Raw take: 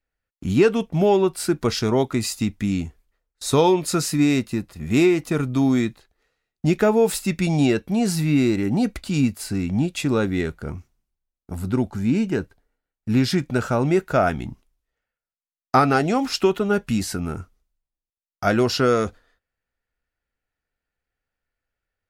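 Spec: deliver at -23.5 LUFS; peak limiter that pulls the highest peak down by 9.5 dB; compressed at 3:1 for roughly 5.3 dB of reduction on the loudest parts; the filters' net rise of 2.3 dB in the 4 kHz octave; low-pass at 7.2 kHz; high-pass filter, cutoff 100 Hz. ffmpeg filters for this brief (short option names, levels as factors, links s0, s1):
-af "highpass=100,lowpass=7200,equalizer=f=4000:t=o:g=3.5,acompressor=threshold=0.112:ratio=3,volume=1.33,alimiter=limit=0.224:level=0:latency=1"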